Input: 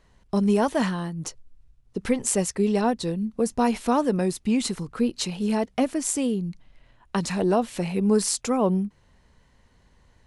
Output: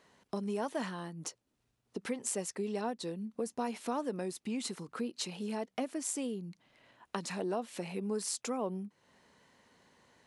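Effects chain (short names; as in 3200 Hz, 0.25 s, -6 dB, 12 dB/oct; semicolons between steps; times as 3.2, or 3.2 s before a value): compressor 2:1, threshold -41 dBFS, peak gain reduction 14 dB; HPF 230 Hz 12 dB/oct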